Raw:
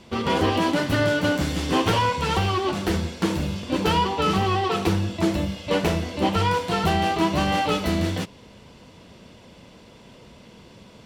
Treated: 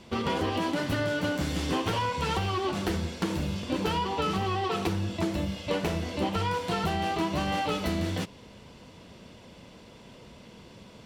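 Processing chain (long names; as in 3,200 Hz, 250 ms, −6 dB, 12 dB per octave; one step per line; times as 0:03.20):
downward compressor, threshold −23 dBFS, peak gain reduction 6.5 dB
level −2 dB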